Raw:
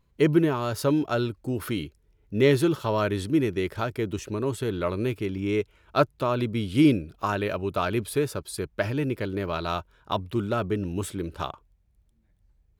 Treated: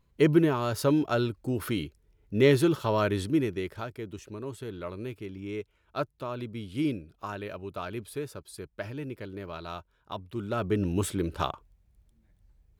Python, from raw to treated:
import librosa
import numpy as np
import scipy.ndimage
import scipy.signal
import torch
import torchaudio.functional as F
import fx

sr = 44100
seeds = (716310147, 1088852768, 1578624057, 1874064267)

y = fx.gain(x, sr, db=fx.line((3.21, -1.0), (4.0, -10.0), (10.28, -10.0), (10.82, 2.0)))